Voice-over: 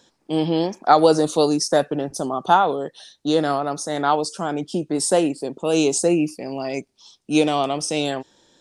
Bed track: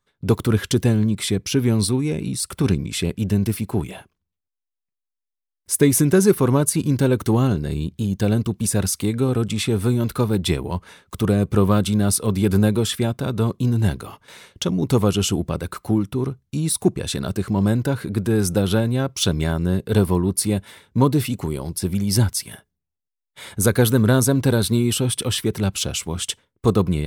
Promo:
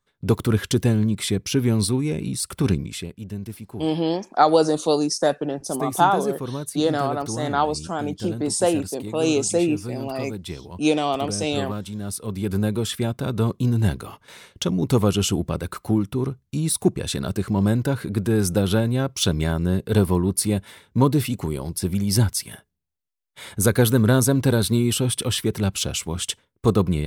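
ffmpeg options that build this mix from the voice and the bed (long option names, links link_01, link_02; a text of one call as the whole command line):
ffmpeg -i stem1.wav -i stem2.wav -filter_complex "[0:a]adelay=3500,volume=-2dB[link_01];[1:a]volume=10dB,afade=type=out:start_time=2.76:duration=0.33:silence=0.281838,afade=type=in:start_time=12:duration=1.4:silence=0.266073[link_02];[link_01][link_02]amix=inputs=2:normalize=0" out.wav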